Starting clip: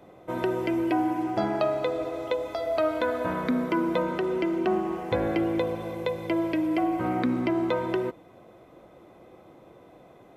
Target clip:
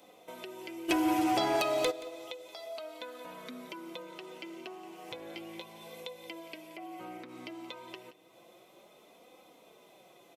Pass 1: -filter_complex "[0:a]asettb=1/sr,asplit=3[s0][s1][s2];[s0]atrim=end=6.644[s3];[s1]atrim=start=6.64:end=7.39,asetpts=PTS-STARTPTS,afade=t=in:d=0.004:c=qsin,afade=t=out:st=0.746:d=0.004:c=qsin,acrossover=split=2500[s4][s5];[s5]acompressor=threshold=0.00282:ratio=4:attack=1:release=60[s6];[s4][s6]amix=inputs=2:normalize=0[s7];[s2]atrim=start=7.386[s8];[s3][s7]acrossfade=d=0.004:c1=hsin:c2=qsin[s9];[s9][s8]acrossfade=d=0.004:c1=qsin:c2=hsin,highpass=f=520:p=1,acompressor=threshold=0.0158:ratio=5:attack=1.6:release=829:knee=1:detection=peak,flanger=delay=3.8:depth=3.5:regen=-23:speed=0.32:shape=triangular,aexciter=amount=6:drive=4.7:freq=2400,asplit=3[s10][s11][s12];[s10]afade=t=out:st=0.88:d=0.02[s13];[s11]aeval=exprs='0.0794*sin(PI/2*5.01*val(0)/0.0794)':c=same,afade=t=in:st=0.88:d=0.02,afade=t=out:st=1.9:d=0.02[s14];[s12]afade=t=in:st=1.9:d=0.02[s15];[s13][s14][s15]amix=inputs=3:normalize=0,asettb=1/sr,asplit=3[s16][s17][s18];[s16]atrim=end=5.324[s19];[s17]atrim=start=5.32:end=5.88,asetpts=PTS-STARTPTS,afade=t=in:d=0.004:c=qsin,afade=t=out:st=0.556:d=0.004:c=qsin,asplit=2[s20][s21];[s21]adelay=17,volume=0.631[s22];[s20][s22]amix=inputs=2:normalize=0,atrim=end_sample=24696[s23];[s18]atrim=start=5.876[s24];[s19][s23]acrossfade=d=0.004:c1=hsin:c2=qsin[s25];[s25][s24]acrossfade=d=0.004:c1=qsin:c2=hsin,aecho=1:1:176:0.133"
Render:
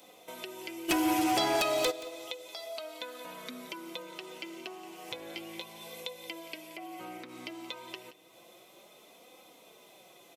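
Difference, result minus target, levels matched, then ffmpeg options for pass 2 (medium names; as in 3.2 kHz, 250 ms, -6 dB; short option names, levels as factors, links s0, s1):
4 kHz band +3.0 dB
-filter_complex "[0:a]asettb=1/sr,asplit=3[s0][s1][s2];[s0]atrim=end=6.644[s3];[s1]atrim=start=6.64:end=7.39,asetpts=PTS-STARTPTS,afade=t=in:d=0.004:c=qsin,afade=t=out:st=0.746:d=0.004:c=qsin,acrossover=split=2500[s4][s5];[s5]acompressor=threshold=0.00282:ratio=4:attack=1:release=60[s6];[s4][s6]amix=inputs=2:normalize=0[s7];[s2]atrim=start=7.386[s8];[s3][s7]acrossfade=d=0.004:c1=hsin:c2=qsin[s9];[s9][s8]acrossfade=d=0.004:c1=qsin:c2=hsin,highpass=f=520:p=1,acompressor=threshold=0.0158:ratio=5:attack=1.6:release=829:knee=1:detection=peak,highshelf=f=2300:g=-7.5,flanger=delay=3.8:depth=3.5:regen=-23:speed=0.32:shape=triangular,aexciter=amount=6:drive=4.7:freq=2400,asplit=3[s10][s11][s12];[s10]afade=t=out:st=0.88:d=0.02[s13];[s11]aeval=exprs='0.0794*sin(PI/2*5.01*val(0)/0.0794)':c=same,afade=t=in:st=0.88:d=0.02,afade=t=out:st=1.9:d=0.02[s14];[s12]afade=t=in:st=1.9:d=0.02[s15];[s13][s14][s15]amix=inputs=3:normalize=0,asettb=1/sr,asplit=3[s16][s17][s18];[s16]atrim=end=5.324[s19];[s17]atrim=start=5.32:end=5.88,asetpts=PTS-STARTPTS,afade=t=in:d=0.004:c=qsin,afade=t=out:st=0.556:d=0.004:c=qsin,asplit=2[s20][s21];[s21]adelay=17,volume=0.631[s22];[s20][s22]amix=inputs=2:normalize=0,atrim=end_sample=24696[s23];[s18]atrim=start=5.876[s24];[s19][s23]acrossfade=d=0.004:c1=hsin:c2=qsin[s25];[s25][s24]acrossfade=d=0.004:c1=qsin:c2=hsin,aecho=1:1:176:0.133"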